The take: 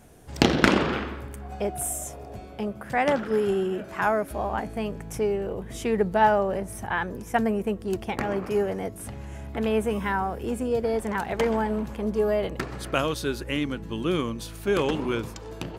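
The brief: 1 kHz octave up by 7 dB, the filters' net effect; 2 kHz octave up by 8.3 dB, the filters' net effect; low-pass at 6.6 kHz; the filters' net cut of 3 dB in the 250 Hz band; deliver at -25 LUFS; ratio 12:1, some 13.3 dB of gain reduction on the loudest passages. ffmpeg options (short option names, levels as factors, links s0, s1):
-af "lowpass=6600,equalizer=f=250:t=o:g=-4.5,equalizer=f=1000:t=o:g=7.5,equalizer=f=2000:t=o:g=8,acompressor=threshold=0.0631:ratio=12,volume=1.88"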